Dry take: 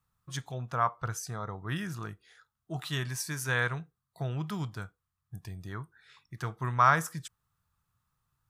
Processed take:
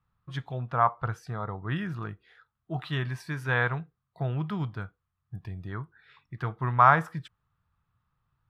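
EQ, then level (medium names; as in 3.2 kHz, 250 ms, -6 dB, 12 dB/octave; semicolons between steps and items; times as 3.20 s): treble shelf 3.6 kHz +9 dB; dynamic bell 800 Hz, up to +6 dB, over -43 dBFS, Q 2.5; distance through air 450 m; +4.0 dB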